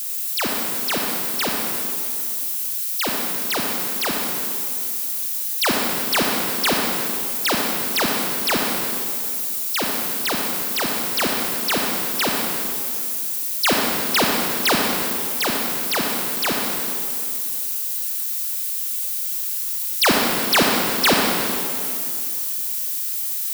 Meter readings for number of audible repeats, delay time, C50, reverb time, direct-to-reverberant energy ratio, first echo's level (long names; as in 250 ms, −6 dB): no echo audible, no echo audible, 0.0 dB, 2.5 s, −0.5 dB, no echo audible